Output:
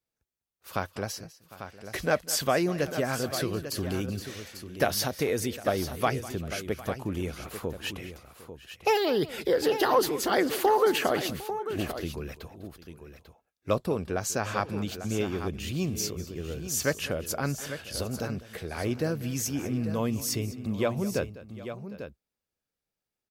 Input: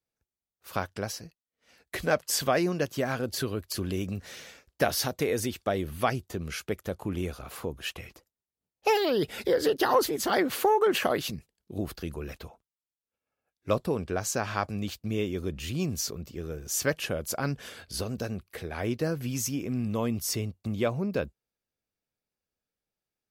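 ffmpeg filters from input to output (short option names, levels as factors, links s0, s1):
-af "aecho=1:1:201|754|845:0.133|0.106|0.299"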